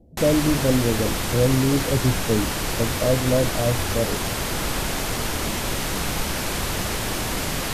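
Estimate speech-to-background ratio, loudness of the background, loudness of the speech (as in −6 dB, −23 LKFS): 2.0 dB, −25.0 LKFS, −23.0 LKFS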